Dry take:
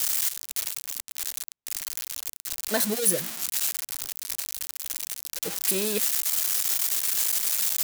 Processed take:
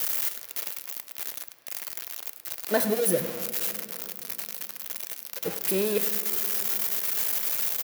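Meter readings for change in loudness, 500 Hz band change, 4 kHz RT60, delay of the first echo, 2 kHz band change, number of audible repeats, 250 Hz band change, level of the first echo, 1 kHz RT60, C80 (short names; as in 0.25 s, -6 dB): -2.0 dB, +4.5 dB, 1.4 s, 0.103 s, -0.5 dB, 1, +2.0 dB, -16.5 dB, 2.5 s, 11.5 dB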